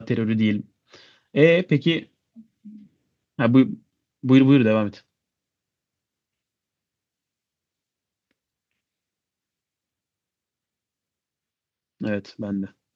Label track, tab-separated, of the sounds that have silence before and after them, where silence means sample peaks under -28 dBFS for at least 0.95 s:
3.390000	4.890000	sound